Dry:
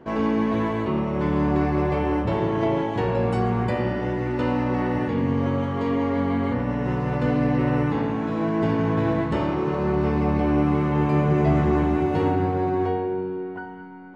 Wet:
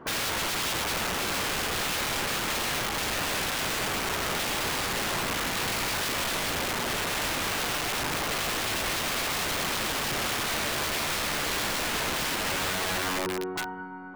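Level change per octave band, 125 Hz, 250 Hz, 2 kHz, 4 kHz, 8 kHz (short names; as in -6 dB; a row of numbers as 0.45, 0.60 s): -16.0 dB, -15.5 dB, +6.0 dB, +16.0 dB, n/a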